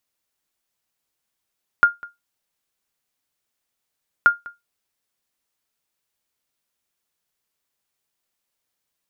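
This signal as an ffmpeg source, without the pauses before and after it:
-f lavfi -i "aevalsrc='0.596*(sin(2*PI*1410*mod(t,2.43))*exp(-6.91*mod(t,2.43)/0.18)+0.075*sin(2*PI*1410*max(mod(t,2.43)-0.2,0))*exp(-6.91*max(mod(t,2.43)-0.2,0)/0.18))':d=4.86:s=44100"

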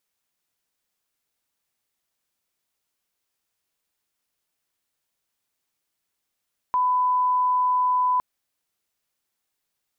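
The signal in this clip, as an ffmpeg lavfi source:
-f lavfi -i "sine=f=1000:d=1.46:r=44100,volume=0.06dB"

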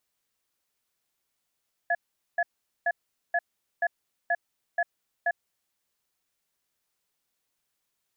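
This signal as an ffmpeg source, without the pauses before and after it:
-f lavfi -i "aevalsrc='0.0596*(sin(2*PI*692*t)+sin(2*PI*1700*t))*clip(min(mod(t,0.48),0.05-mod(t,0.48))/0.005,0,1)':d=3.58:s=44100"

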